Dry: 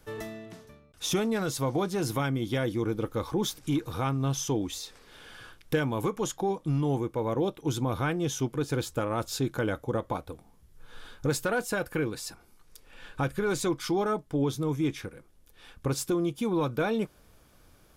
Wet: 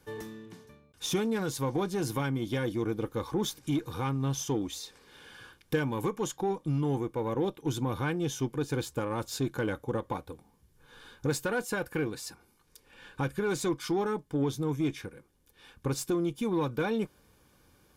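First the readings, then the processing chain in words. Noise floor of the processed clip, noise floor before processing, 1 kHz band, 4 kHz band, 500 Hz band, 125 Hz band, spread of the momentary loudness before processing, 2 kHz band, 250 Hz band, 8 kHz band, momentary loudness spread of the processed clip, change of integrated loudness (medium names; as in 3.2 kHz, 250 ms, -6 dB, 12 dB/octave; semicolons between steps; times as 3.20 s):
-66 dBFS, -60 dBFS, -2.5 dB, -2.5 dB, -2.0 dB, -2.0 dB, 11 LU, -2.0 dB, -1.5 dB, -3.0 dB, 12 LU, -2.0 dB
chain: comb of notches 660 Hz; Chebyshev shaper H 8 -32 dB, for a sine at -14.5 dBFS; trim -1.5 dB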